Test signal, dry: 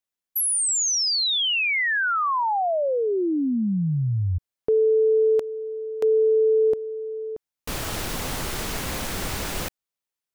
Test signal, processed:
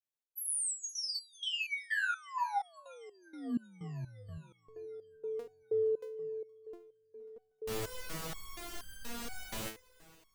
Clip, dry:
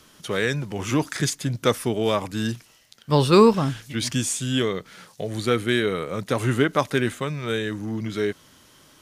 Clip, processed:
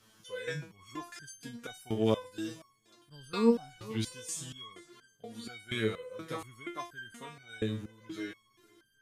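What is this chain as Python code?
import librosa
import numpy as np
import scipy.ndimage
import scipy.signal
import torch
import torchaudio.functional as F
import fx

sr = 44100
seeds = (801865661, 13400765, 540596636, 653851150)

y = fx.echo_swing(x, sr, ms=781, ratio=1.5, feedback_pct=49, wet_db=-22.0)
y = fx.resonator_held(y, sr, hz=4.2, low_hz=110.0, high_hz=1600.0)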